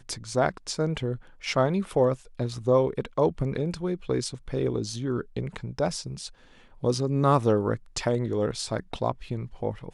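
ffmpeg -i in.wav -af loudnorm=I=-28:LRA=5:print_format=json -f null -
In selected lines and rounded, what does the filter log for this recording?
"input_i" : "-27.6",
"input_tp" : "-8.5",
"input_lra" : "2.6",
"input_thresh" : "-37.8",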